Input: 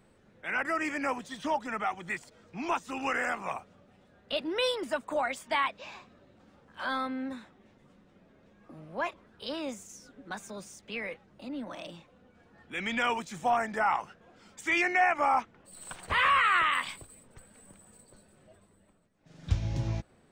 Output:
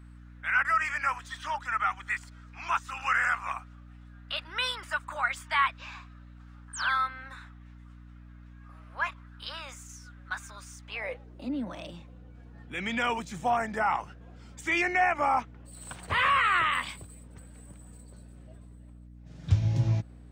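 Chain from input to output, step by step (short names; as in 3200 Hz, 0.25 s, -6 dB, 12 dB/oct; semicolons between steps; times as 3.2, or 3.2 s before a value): high-pass sweep 1300 Hz -> 100 Hz, 10.78–11.87; painted sound fall, 6.73–6.97, 1200–9500 Hz -39 dBFS; hum 60 Hz, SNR 17 dB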